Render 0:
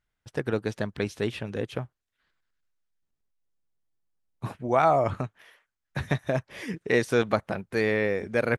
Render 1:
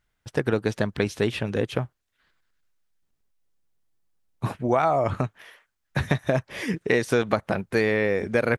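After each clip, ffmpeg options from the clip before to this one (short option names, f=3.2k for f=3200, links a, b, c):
-af "acompressor=threshold=-24dB:ratio=6,volume=6.5dB"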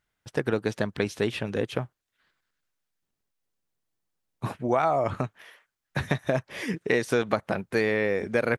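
-af "lowshelf=f=69:g=-10.5,volume=-2dB"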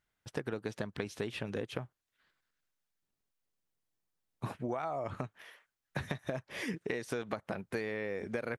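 -af "acompressor=threshold=-29dB:ratio=6,volume=-4dB"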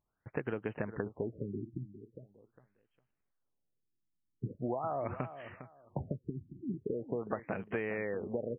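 -af "aecho=1:1:405|810|1215:0.237|0.0522|0.0115,afftfilt=real='re*lt(b*sr/1024,350*pow(3300/350,0.5+0.5*sin(2*PI*0.42*pts/sr)))':imag='im*lt(b*sr/1024,350*pow(3300/350,0.5+0.5*sin(2*PI*0.42*pts/sr)))':win_size=1024:overlap=0.75,volume=1dB"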